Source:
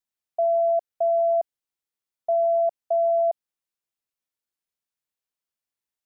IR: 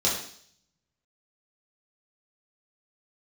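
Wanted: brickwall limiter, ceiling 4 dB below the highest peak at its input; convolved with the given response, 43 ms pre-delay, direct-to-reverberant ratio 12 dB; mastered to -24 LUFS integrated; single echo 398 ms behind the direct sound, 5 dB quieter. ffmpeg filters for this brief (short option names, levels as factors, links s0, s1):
-filter_complex "[0:a]alimiter=limit=0.0841:level=0:latency=1,aecho=1:1:398:0.562,asplit=2[s0][s1];[1:a]atrim=start_sample=2205,adelay=43[s2];[s1][s2]afir=irnorm=-1:irlink=0,volume=0.0668[s3];[s0][s3]amix=inputs=2:normalize=0,volume=1.5"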